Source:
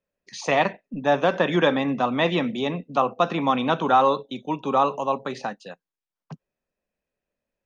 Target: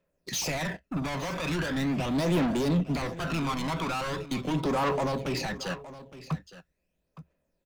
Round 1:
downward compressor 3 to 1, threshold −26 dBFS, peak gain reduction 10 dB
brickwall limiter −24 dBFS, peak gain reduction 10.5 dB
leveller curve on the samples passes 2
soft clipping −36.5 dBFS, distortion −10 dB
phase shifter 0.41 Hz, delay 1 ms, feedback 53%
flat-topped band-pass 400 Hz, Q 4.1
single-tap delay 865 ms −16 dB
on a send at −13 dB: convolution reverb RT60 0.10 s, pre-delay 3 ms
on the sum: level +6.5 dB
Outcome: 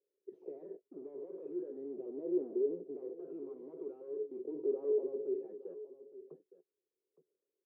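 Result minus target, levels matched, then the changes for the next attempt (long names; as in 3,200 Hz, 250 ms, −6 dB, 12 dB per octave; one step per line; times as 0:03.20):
500 Hz band +6.5 dB; downward compressor: peak gain reduction −4.5 dB
change: downward compressor 3 to 1, threshold −33 dBFS, peak gain reduction 15 dB
remove: flat-topped band-pass 400 Hz, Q 4.1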